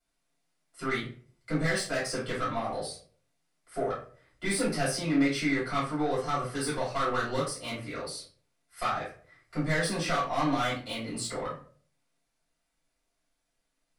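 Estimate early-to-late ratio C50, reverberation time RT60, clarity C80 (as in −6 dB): 5.5 dB, 0.45 s, 10.5 dB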